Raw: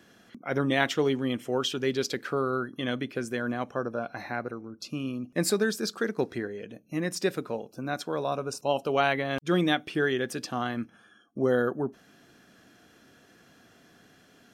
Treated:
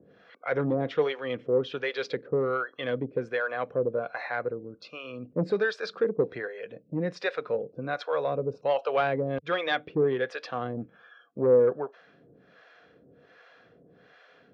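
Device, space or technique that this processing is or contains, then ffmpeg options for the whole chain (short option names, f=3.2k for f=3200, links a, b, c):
guitar amplifier with harmonic tremolo: -filter_complex "[0:a]acrossover=split=540[a][b];[a]aeval=exprs='val(0)*(1-1/2+1/2*cos(2*PI*1.3*n/s))':c=same[c];[b]aeval=exprs='val(0)*(1-1/2-1/2*cos(2*PI*1.3*n/s))':c=same[d];[c][d]amix=inputs=2:normalize=0,asoftclip=type=tanh:threshold=-23dB,highpass=86,equalizer=f=100:t=q:w=4:g=-5,equalizer=f=230:t=q:w=4:g=-9,equalizer=f=340:t=q:w=4:g=-6,equalizer=f=490:t=q:w=4:g=9,equalizer=f=850:t=q:w=4:g=-3,equalizer=f=3k:t=q:w=4:g=-6,lowpass=f=3.6k:w=0.5412,lowpass=f=3.6k:w=1.3066,volume=6.5dB"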